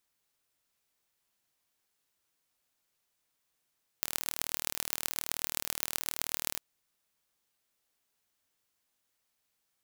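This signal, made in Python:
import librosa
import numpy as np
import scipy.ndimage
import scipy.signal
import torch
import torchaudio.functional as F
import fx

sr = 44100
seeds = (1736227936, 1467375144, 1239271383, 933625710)

y = fx.impulse_train(sr, length_s=2.57, per_s=38.9, accent_every=5, level_db=-2.0)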